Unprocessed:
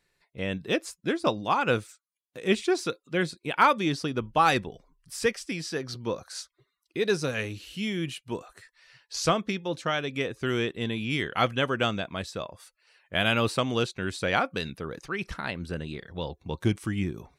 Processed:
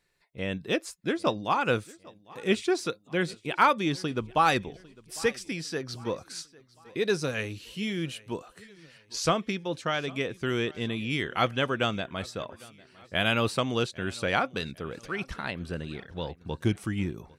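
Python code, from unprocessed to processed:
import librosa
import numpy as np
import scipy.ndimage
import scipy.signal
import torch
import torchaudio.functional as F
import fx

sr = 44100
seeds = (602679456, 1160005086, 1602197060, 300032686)

y = fx.echo_feedback(x, sr, ms=802, feedback_pct=47, wet_db=-23.0)
y = y * librosa.db_to_amplitude(-1.0)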